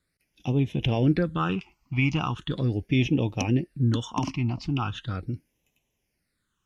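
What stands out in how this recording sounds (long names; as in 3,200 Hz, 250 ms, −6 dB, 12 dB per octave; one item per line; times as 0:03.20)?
phaser sweep stages 8, 0.39 Hz, lowest notch 470–1,400 Hz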